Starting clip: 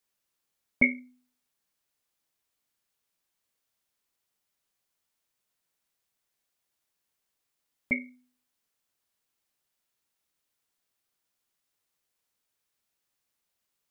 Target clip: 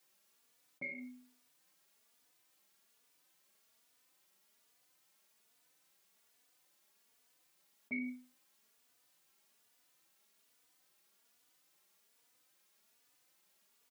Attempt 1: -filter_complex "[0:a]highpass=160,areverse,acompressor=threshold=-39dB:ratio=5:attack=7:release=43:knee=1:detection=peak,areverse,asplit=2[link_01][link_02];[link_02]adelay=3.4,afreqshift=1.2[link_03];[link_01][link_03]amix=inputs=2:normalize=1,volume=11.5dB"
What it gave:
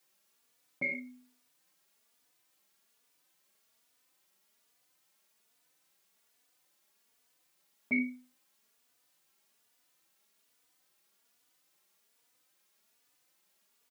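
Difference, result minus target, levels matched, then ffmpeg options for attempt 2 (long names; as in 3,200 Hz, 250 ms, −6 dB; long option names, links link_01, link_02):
downward compressor: peak gain reduction −9 dB
-filter_complex "[0:a]highpass=160,areverse,acompressor=threshold=-50.5dB:ratio=5:attack=7:release=43:knee=1:detection=peak,areverse,asplit=2[link_01][link_02];[link_02]adelay=3.4,afreqshift=1.2[link_03];[link_01][link_03]amix=inputs=2:normalize=1,volume=11.5dB"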